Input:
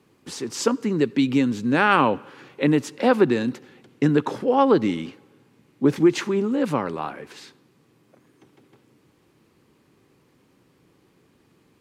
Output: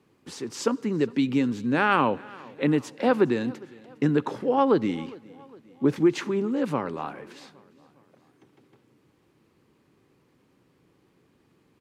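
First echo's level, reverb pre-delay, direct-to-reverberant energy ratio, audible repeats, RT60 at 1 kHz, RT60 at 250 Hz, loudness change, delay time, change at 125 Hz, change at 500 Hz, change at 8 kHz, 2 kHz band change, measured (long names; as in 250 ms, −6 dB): −23.0 dB, no reverb audible, no reverb audible, 3, no reverb audible, no reverb audible, −3.5 dB, 408 ms, −3.5 dB, −3.5 dB, can't be measured, −4.0 dB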